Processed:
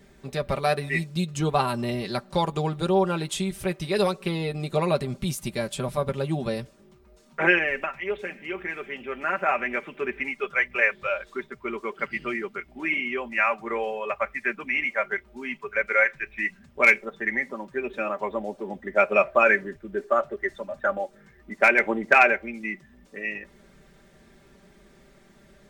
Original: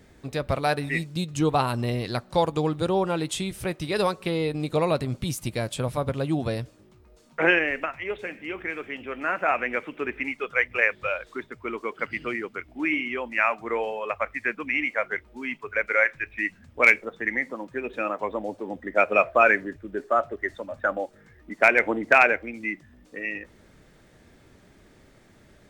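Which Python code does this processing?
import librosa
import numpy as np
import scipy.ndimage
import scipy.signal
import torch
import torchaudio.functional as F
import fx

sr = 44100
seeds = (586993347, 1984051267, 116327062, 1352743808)

y = x + 0.69 * np.pad(x, (int(5.1 * sr / 1000.0), 0))[:len(x)]
y = y * 10.0 ** (-1.5 / 20.0)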